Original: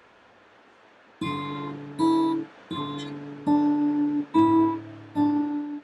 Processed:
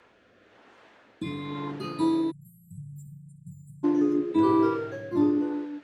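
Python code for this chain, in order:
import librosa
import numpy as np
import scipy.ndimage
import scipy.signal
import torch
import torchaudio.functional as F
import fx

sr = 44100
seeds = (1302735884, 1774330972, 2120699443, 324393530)

y = fx.echo_pitch(x, sr, ms=778, semitones=3, count=3, db_per_echo=-6.0)
y = fx.rotary(y, sr, hz=1.0)
y = fx.brickwall_bandstop(y, sr, low_hz=180.0, high_hz=7100.0, at=(2.3, 3.83), fade=0.02)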